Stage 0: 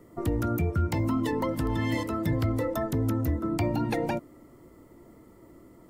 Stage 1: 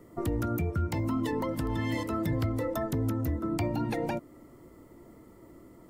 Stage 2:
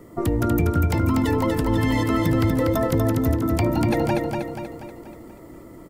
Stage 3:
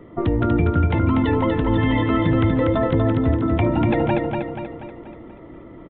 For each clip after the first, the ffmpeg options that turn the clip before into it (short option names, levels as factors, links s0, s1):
-af "alimiter=limit=0.0891:level=0:latency=1:release=267"
-af "aecho=1:1:241|482|723|964|1205|1446|1687:0.631|0.322|0.164|0.0837|0.0427|0.0218|0.0111,volume=2.51"
-af "aresample=8000,aresample=44100,volume=1.26"